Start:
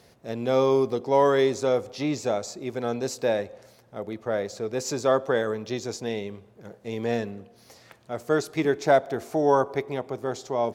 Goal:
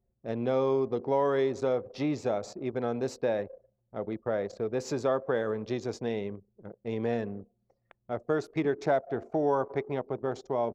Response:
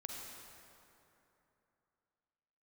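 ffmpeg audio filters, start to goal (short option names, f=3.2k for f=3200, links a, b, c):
-af "acompressor=threshold=-27dB:ratio=2,anlmdn=0.398,aemphasis=mode=reproduction:type=75kf"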